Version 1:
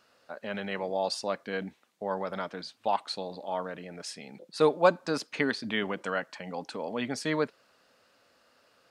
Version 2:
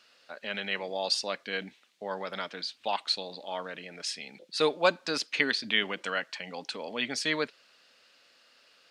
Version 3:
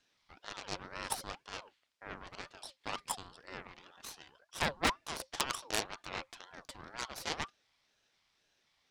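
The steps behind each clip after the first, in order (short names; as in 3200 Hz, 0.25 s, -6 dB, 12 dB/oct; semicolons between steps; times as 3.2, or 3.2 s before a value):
weighting filter D; gain -3 dB
added harmonics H 3 -9 dB, 6 -17 dB, 7 -35 dB, 8 -33 dB, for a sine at -8.5 dBFS; wavefolder -16.5 dBFS; ring modulator with a swept carrier 870 Hz, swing 40%, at 2 Hz; gain +3.5 dB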